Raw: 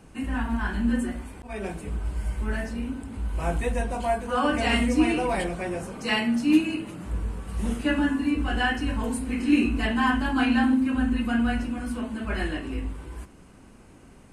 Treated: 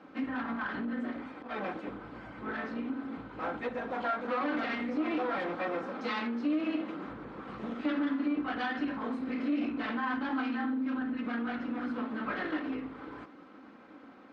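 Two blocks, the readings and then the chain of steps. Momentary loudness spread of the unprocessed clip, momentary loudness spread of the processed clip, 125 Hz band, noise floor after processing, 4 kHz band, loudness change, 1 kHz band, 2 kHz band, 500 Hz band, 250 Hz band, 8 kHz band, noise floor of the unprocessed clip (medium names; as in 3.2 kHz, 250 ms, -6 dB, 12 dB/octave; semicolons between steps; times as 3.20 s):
11 LU, 12 LU, -19.0 dB, -53 dBFS, -12.5 dB, -8.0 dB, -6.0 dB, -7.5 dB, -6.5 dB, -8.0 dB, under -25 dB, -50 dBFS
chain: comb filter that takes the minimum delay 3.8 ms; peak limiter -19.5 dBFS, peak gain reduction 10 dB; compression, threshold -30 dBFS, peak gain reduction 7.5 dB; cabinet simulation 260–3700 Hz, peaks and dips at 300 Hz +5 dB, 1.3 kHz +6 dB, 2.8 kHz -7 dB; trim +1 dB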